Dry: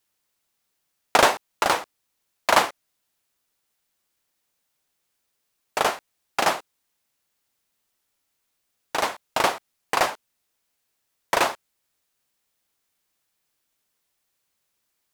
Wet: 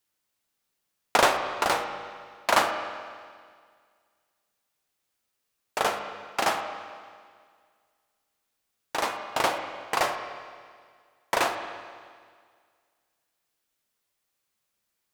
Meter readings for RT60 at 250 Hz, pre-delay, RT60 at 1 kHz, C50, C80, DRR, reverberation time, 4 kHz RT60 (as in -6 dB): 1.9 s, 9 ms, 1.9 s, 7.0 dB, 8.0 dB, 5.0 dB, 1.9 s, 1.9 s